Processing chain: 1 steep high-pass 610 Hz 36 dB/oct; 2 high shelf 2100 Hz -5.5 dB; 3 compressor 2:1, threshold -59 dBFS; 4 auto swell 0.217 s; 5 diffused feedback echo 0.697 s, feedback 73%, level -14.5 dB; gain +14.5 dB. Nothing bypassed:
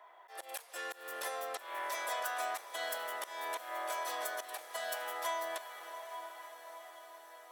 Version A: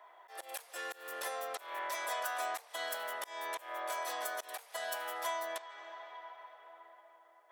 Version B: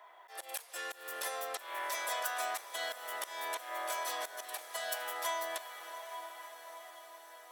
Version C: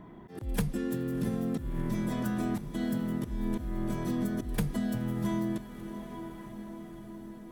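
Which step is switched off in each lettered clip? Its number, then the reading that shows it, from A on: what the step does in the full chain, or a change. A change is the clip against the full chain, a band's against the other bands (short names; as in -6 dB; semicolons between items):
5, echo-to-direct -11.0 dB to none; 2, 8 kHz band +3.5 dB; 1, 250 Hz band +37.0 dB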